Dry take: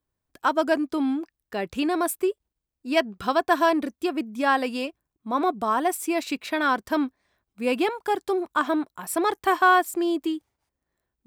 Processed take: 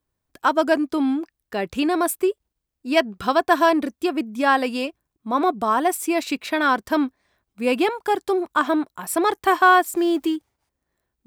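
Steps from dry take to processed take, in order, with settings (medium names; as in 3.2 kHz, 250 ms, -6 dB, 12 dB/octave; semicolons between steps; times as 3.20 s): 9.94–10.36 s: companding laws mixed up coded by mu; trim +3.5 dB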